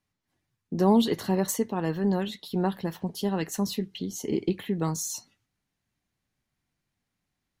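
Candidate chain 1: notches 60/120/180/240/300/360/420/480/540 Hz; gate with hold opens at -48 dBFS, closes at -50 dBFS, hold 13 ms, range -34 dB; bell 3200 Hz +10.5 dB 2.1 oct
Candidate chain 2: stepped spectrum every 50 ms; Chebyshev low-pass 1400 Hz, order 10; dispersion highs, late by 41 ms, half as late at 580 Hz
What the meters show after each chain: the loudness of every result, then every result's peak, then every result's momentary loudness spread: -26.5, -29.5 LUFS; -9.0, -11.0 dBFS; 9, 12 LU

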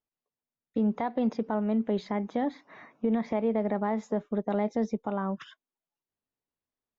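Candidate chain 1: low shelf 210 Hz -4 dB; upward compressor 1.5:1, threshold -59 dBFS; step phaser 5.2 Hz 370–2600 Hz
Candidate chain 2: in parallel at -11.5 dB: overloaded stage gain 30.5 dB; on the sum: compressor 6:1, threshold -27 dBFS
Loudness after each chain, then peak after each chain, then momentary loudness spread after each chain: -35.0, -33.0 LUFS; -20.0, -19.0 dBFS; 7, 6 LU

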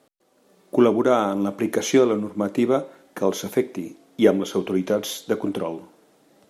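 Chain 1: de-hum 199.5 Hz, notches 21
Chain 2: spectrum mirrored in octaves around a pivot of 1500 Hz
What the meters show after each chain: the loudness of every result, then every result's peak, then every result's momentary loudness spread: -22.5, -25.5 LUFS; -2.0, -7.0 dBFS; 11, 11 LU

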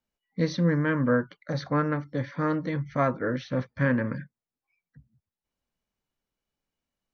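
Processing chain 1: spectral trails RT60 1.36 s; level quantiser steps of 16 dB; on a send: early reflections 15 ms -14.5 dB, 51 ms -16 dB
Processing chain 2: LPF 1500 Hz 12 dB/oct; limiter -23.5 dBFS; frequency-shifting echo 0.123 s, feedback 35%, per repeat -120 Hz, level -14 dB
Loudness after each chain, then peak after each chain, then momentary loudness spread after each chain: -33.0, -33.0 LUFS; -18.5, -21.5 dBFS; 5, 7 LU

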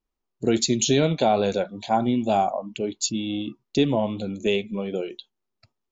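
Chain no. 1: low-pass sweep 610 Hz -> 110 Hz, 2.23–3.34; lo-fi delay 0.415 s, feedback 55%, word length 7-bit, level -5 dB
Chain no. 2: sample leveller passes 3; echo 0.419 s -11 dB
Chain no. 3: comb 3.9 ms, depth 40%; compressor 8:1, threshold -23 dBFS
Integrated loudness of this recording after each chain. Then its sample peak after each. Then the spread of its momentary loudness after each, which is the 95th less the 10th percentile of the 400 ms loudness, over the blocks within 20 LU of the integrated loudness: -20.5, -17.0, -29.0 LUFS; -4.0, -7.5, -13.5 dBFS; 18, 8, 5 LU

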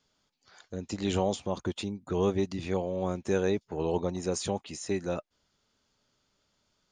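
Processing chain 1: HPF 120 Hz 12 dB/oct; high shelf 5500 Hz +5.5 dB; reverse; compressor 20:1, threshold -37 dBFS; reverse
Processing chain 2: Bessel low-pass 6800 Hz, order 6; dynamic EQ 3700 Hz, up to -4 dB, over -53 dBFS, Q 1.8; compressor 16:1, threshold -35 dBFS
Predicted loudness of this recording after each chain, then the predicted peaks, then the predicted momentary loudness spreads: -43.0, -41.5 LUFS; -26.0, -24.0 dBFS; 4, 4 LU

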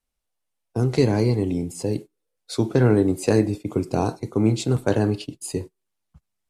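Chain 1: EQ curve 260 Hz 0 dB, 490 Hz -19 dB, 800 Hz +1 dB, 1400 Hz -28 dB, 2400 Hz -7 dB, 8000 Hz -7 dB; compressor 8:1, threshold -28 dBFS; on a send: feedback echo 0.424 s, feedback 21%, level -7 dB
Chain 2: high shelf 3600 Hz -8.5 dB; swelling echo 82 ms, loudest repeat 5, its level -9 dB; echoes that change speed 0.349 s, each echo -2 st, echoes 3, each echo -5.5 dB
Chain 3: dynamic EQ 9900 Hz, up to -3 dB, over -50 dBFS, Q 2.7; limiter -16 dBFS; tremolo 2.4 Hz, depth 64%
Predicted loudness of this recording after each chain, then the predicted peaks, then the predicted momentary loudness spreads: -34.0, -18.5, -30.5 LUFS; -17.0, -3.5, -16.0 dBFS; 10, 5, 9 LU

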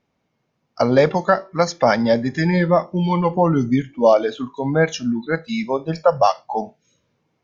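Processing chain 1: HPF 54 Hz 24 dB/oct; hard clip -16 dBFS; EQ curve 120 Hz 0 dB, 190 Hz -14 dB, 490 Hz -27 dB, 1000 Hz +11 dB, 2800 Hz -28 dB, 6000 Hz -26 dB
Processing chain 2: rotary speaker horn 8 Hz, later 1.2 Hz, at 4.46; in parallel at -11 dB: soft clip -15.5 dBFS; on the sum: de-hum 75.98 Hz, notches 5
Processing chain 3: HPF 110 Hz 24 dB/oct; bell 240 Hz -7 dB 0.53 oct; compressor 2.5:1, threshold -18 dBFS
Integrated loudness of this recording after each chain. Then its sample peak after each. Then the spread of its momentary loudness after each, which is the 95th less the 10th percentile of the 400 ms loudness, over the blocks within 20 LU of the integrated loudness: -27.0, -20.0, -23.5 LUFS; -9.0, -3.5, -6.0 dBFS; 12, 9, 7 LU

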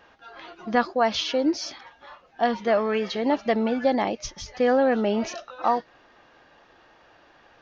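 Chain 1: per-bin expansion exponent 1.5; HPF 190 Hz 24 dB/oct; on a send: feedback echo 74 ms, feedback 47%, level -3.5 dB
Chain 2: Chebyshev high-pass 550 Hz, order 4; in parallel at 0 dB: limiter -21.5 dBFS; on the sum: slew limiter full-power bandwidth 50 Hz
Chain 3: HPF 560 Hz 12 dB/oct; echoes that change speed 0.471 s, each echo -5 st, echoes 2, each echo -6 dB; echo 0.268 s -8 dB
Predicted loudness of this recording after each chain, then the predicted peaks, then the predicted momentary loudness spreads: -25.0, -28.5, -27.0 LUFS; -8.0, -14.0, -9.5 dBFS; 12, 14, 11 LU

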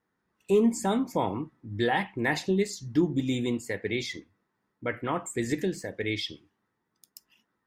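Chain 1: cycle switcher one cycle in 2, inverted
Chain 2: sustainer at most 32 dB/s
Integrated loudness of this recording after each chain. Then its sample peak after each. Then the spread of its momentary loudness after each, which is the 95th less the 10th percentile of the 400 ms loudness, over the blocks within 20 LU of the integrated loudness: -29.0, -26.5 LUFS; -13.0, -11.5 dBFS; 11, 13 LU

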